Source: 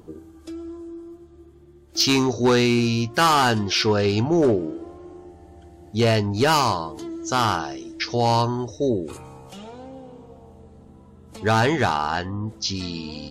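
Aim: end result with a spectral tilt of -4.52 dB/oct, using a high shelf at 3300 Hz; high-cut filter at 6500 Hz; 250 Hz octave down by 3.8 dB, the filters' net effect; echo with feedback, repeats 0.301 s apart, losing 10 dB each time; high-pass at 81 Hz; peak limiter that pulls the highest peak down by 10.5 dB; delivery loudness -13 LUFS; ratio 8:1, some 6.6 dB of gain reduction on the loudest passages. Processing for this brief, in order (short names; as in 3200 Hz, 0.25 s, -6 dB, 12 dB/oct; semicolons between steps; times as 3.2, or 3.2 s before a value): HPF 81 Hz; LPF 6500 Hz; bell 250 Hz -5 dB; high shelf 3300 Hz +4.5 dB; compressor 8:1, threshold -21 dBFS; limiter -20.5 dBFS; feedback echo 0.301 s, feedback 32%, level -10 dB; gain +18 dB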